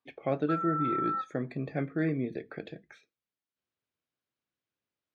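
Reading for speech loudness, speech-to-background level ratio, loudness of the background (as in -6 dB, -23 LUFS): -33.0 LUFS, 0.0 dB, -33.0 LUFS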